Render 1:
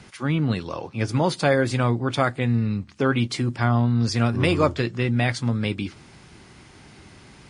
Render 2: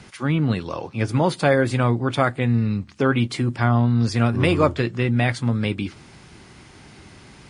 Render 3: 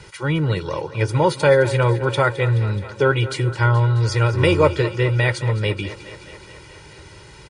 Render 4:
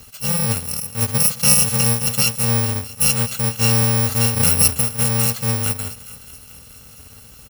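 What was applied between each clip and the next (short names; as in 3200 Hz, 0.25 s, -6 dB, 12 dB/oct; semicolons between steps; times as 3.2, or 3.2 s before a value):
dynamic EQ 5500 Hz, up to -6 dB, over -45 dBFS, Q 1.3; gain +2 dB
comb 2.1 ms, depth 97%; thinning echo 0.213 s, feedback 73%, high-pass 180 Hz, level -15 dB
FFT order left unsorted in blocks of 128 samples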